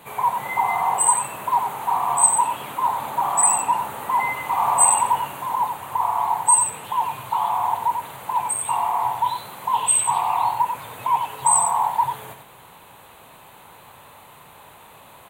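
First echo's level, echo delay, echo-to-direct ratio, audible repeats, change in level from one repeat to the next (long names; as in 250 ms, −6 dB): −7.0 dB, 92 ms, −7.0 dB, 1, repeats not evenly spaced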